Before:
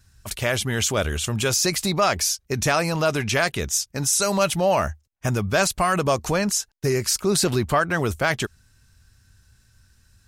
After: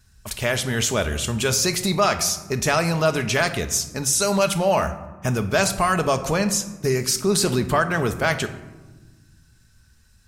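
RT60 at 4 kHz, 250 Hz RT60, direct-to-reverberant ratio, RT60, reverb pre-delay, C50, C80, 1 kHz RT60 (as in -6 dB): 0.60 s, 2.1 s, 8.0 dB, 1.3 s, 5 ms, 12.0 dB, 14.5 dB, 1.2 s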